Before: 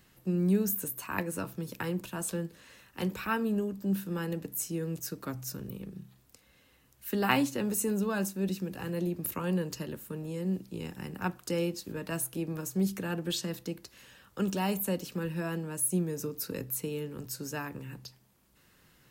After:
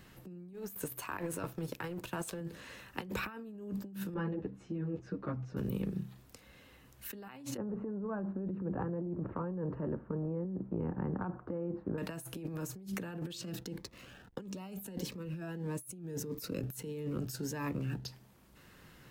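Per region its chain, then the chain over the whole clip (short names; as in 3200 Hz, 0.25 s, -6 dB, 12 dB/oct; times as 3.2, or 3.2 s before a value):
0.53–2.41 G.711 law mismatch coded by A + bell 210 Hz -8.5 dB 0.45 oct
4.14–5.57 tape spacing loss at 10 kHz 41 dB + ensemble effect
7.57–11.98 LPF 1300 Hz 24 dB/oct + compressor 4:1, threshold -36 dBFS
13.33–18.06 backlash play -51.5 dBFS + cascading phaser rising 1.6 Hz
whole clip: negative-ratio compressor -41 dBFS, ratio -1; high shelf 3800 Hz -7.5 dB; gain +1.5 dB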